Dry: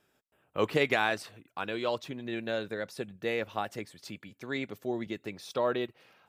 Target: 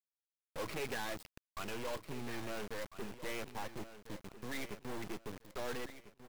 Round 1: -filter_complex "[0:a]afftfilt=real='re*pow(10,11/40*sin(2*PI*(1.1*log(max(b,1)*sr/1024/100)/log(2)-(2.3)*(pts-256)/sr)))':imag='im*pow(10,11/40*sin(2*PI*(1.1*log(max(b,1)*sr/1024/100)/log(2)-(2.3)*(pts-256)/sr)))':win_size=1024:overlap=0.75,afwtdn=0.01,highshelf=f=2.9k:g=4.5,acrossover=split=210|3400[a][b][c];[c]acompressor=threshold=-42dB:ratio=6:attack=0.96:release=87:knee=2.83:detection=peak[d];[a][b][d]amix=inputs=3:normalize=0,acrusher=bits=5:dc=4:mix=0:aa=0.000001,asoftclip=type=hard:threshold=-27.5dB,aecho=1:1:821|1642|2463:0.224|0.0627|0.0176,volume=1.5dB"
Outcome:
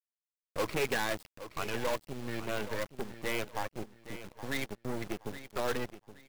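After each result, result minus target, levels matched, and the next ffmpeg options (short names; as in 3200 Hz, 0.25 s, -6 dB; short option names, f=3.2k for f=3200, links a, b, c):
echo 0.527 s early; hard clip: distortion -5 dB
-filter_complex "[0:a]afftfilt=real='re*pow(10,11/40*sin(2*PI*(1.1*log(max(b,1)*sr/1024/100)/log(2)-(2.3)*(pts-256)/sr)))':imag='im*pow(10,11/40*sin(2*PI*(1.1*log(max(b,1)*sr/1024/100)/log(2)-(2.3)*(pts-256)/sr)))':win_size=1024:overlap=0.75,afwtdn=0.01,highshelf=f=2.9k:g=4.5,acrossover=split=210|3400[a][b][c];[c]acompressor=threshold=-42dB:ratio=6:attack=0.96:release=87:knee=2.83:detection=peak[d];[a][b][d]amix=inputs=3:normalize=0,acrusher=bits=5:dc=4:mix=0:aa=0.000001,asoftclip=type=hard:threshold=-27.5dB,aecho=1:1:1348|2696|4044:0.224|0.0627|0.0176,volume=1.5dB"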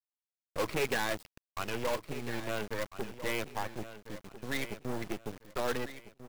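hard clip: distortion -5 dB
-filter_complex "[0:a]afftfilt=real='re*pow(10,11/40*sin(2*PI*(1.1*log(max(b,1)*sr/1024/100)/log(2)-(2.3)*(pts-256)/sr)))':imag='im*pow(10,11/40*sin(2*PI*(1.1*log(max(b,1)*sr/1024/100)/log(2)-(2.3)*(pts-256)/sr)))':win_size=1024:overlap=0.75,afwtdn=0.01,highshelf=f=2.9k:g=4.5,acrossover=split=210|3400[a][b][c];[c]acompressor=threshold=-42dB:ratio=6:attack=0.96:release=87:knee=2.83:detection=peak[d];[a][b][d]amix=inputs=3:normalize=0,acrusher=bits=5:dc=4:mix=0:aa=0.000001,asoftclip=type=hard:threshold=-37dB,aecho=1:1:1348|2696|4044:0.224|0.0627|0.0176,volume=1.5dB"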